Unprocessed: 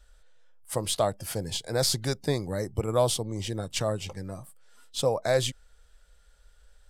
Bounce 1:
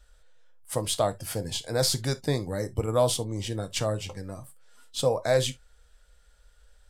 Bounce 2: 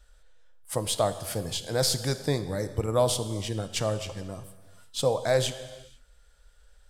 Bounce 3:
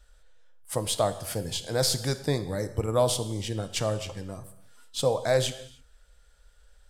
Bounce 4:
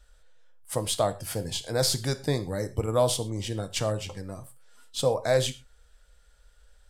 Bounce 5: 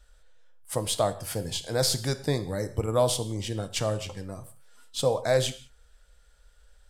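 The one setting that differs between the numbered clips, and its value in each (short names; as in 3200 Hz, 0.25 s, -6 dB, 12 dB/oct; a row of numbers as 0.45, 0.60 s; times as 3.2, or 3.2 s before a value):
non-linear reverb, gate: 90, 520, 340, 150, 220 ms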